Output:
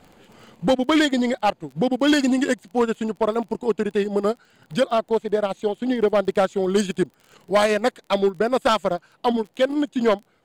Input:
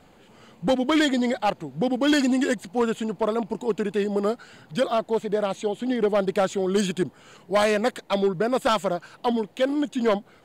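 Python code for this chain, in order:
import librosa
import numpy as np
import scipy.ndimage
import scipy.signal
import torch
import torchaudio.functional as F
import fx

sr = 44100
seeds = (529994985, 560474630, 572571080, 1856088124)

y = fx.transient(x, sr, attack_db=1, sustain_db=-12)
y = fx.dmg_crackle(y, sr, seeds[0], per_s=23.0, level_db=-40.0)
y = y * 10.0 ** (2.5 / 20.0)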